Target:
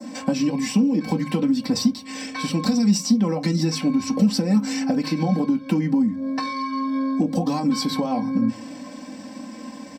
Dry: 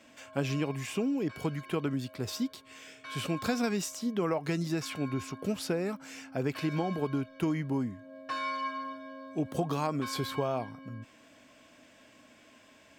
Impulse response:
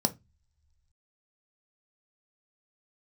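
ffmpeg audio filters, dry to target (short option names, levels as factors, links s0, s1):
-filter_complex "[0:a]adynamicequalizer=threshold=0.002:dfrequency=2800:dqfactor=1:tfrequency=2800:tqfactor=1:attack=5:release=100:ratio=0.375:range=4:mode=boostabove:tftype=bell,aecho=1:1:3.9:0.91,atempo=1.3,acrossover=split=230|4000[s0][s1][s2];[s1]alimiter=level_in=1.06:limit=0.0631:level=0:latency=1:release=390,volume=0.944[s3];[s0][s3][s2]amix=inputs=3:normalize=0,acompressor=threshold=0.0141:ratio=12,asplit=2[s4][s5];[s5]asoftclip=type=hard:threshold=0.0158,volume=0.398[s6];[s4][s6]amix=inputs=2:normalize=0,bandreject=f=50:t=h:w=6,bandreject=f=100:t=h:w=6,bandreject=f=150:t=h:w=6[s7];[1:a]atrim=start_sample=2205[s8];[s7][s8]afir=irnorm=-1:irlink=0,volume=1.41"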